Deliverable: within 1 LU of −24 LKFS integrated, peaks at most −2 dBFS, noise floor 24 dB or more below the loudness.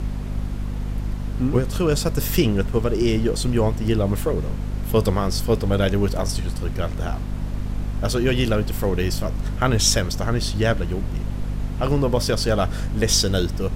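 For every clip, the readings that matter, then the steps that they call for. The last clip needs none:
mains hum 50 Hz; hum harmonics up to 250 Hz; level of the hum −24 dBFS; background noise floor −28 dBFS; target noise floor −47 dBFS; integrated loudness −22.5 LKFS; sample peak −4.0 dBFS; target loudness −24.0 LKFS
→ hum removal 50 Hz, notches 5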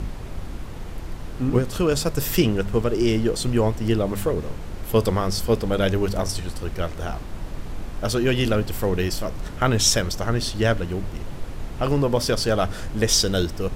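mains hum none found; background noise floor −34 dBFS; target noise floor −47 dBFS
→ noise reduction from a noise print 13 dB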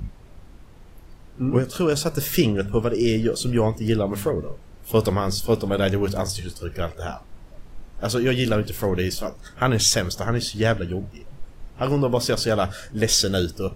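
background noise floor −45 dBFS; target noise floor −47 dBFS
→ noise reduction from a noise print 6 dB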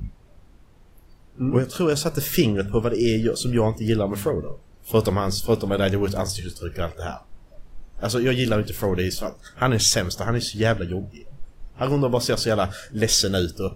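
background noise floor −51 dBFS; integrated loudness −23.0 LKFS; sample peak −4.5 dBFS; target loudness −24.0 LKFS
→ level −1 dB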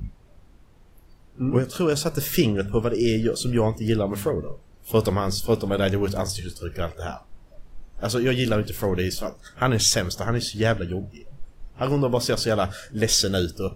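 integrated loudness −24.0 LKFS; sample peak −5.5 dBFS; background noise floor −52 dBFS

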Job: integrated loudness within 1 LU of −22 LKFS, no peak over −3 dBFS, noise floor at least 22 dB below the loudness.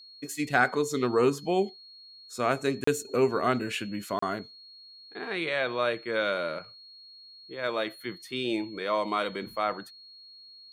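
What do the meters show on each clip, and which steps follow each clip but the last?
number of dropouts 2; longest dropout 34 ms; interfering tone 4,300 Hz; level of the tone −48 dBFS; integrated loudness −29.0 LKFS; sample peak −9.0 dBFS; target loudness −22.0 LKFS
→ repair the gap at 0:02.84/0:04.19, 34 ms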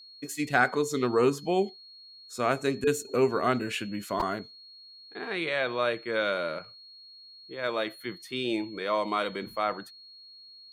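number of dropouts 0; interfering tone 4,300 Hz; level of the tone −48 dBFS
→ notch filter 4,300 Hz, Q 30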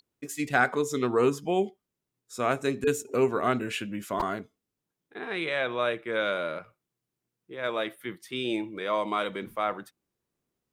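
interfering tone none found; integrated loudness −29.0 LKFS; sample peak −9.0 dBFS; target loudness −22.0 LKFS
→ level +7 dB
brickwall limiter −3 dBFS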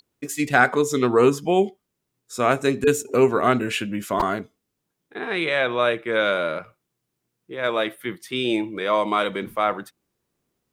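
integrated loudness −22.0 LKFS; sample peak −3.0 dBFS; background noise floor −79 dBFS

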